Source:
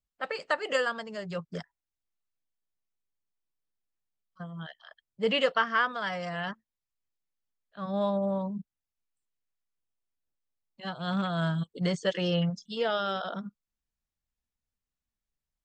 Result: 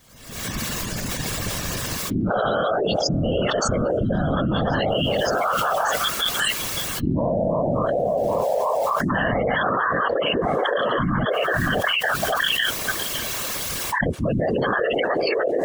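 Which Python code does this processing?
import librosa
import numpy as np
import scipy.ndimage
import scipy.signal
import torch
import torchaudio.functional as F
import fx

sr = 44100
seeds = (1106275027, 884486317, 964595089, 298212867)

p1 = np.flip(x).copy()
p2 = fx.recorder_agc(p1, sr, target_db=-23.0, rise_db_per_s=66.0, max_gain_db=30)
p3 = scipy.signal.sosfilt(scipy.signal.butter(2, 120.0, 'highpass', fs=sr, output='sos'), p2)
p4 = fx.spec_gate(p3, sr, threshold_db=-15, keep='strong')
p5 = fx.low_shelf(p4, sr, hz=200.0, db=5.5)
p6 = p5 + 0.44 * np.pad(p5, (int(1.8 * sr / 1000.0), 0))[:len(p5)]
p7 = p6 + fx.echo_stepped(p6, sr, ms=557, hz=400.0, octaves=1.4, feedback_pct=70, wet_db=-2.5, dry=0)
p8 = fx.whisperise(p7, sr, seeds[0])
p9 = fx.env_flatten(p8, sr, amount_pct=100)
y = F.gain(torch.from_numpy(p9), -3.5).numpy()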